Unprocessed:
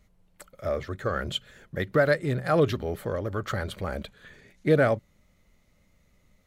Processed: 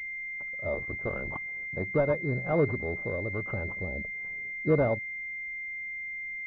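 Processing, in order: 0.74–1.80 s: cycle switcher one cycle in 3, muted; 3.70–4.69 s: low-pass that closes with the level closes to 580 Hz, closed at -29 dBFS; class-D stage that switches slowly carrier 2.1 kHz; trim -3 dB

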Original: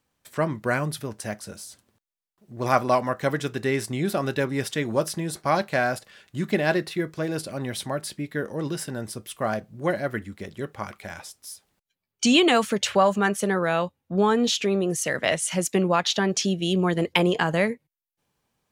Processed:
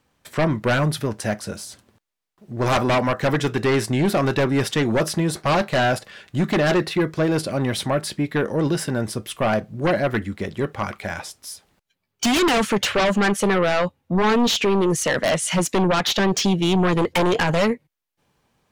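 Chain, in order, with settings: in parallel at -9.5 dB: sine folder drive 17 dB, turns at -4 dBFS; on the sum: treble shelf 6 kHz -8 dB; trim -4 dB

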